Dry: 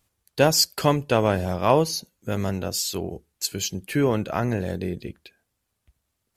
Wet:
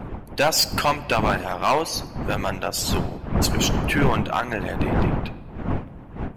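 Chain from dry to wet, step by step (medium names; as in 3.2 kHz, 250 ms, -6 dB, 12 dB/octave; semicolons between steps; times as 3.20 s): wind noise 210 Hz -24 dBFS; high-order bell 1.5 kHz +9.5 dB 2.5 oct; in parallel at +0.5 dB: peak limiter -7.5 dBFS, peak gain reduction 10 dB; on the sum: harmonic-percussive split harmonic -17 dB; overload inside the chain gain 9.5 dB; on a send at -15.5 dB: reverberation RT60 1.5 s, pre-delay 13 ms; on the sum: trim -4 dB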